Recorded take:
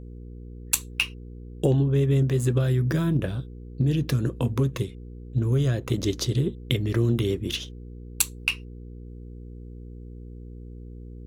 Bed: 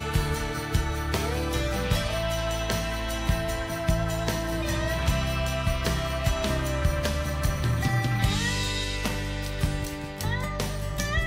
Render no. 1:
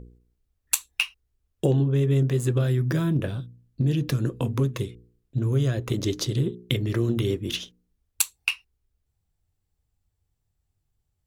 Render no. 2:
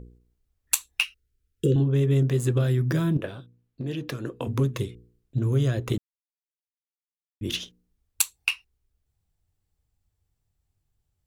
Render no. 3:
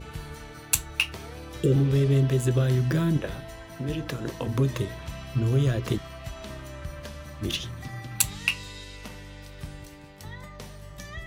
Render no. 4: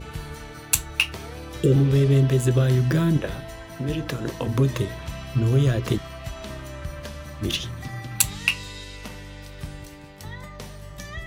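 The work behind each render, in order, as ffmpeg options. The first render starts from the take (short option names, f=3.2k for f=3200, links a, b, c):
-af "bandreject=f=60:t=h:w=4,bandreject=f=120:t=h:w=4,bandreject=f=180:t=h:w=4,bandreject=f=240:t=h:w=4,bandreject=f=300:t=h:w=4,bandreject=f=360:t=h:w=4,bandreject=f=420:t=h:w=4,bandreject=f=480:t=h:w=4"
-filter_complex "[0:a]asettb=1/sr,asplit=3[a][b][c];[a]atrim=end=1.044[d];[b]atrim=start=1.04:end=1.76,asetpts=PTS-STARTPTS,afade=t=in:d=0.004:c=qsin,afade=t=out:st=0.716:d=0.004:c=qsin,asuperstop=centerf=810:order=20:qfactor=1.1[e];[c]atrim=start=1.756[f];[d][e]acrossfade=d=0.004:c1=hsin:c2=qsin[g];[g][f]acrossfade=d=0.004:c1=qsin:c2=hsin,asettb=1/sr,asplit=3[h][i][j];[h]atrim=end=3.174[k];[i]atrim=start=3.17:end=4.47,asetpts=PTS-STARTPTS,afade=t=in:d=0.004:c=qsin,afade=t=out:st=1.296:d=0.004:c=qsin,bass=f=250:g=-12,treble=f=4k:g=-7[l];[j]atrim=start=4.466[m];[k][l]acrossfade=d=0.004:c1=hsin:c2=qsin[n];[n][m]acrossfade=d=0.004:c1=qsin:c2=hsin,asplit=3[o][p][q];[o]atrim=end=5.98,asetpts=PTS-STARTPTS,afade=t=out:st=5.976:d=0.004:c=hsin[r];[p]atrim=start=5.98:end=7.41,asetpts=PTS-STARTPTS,volume=0[s];[q]atrim=start=7.41,asetpts=PTS-STARTPTS,afade=t=in:d=0.004:c=hsin[t];[r][s][t]concat=n=3:v=0:a=1"
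-filter_complex "[1:a]volume=-12.5dB[a];[0:a][a]amix=inputs=2:normalize=0"
-af "volume=3.5dB,alimiter=limit=-2dB:level=0:latency=1"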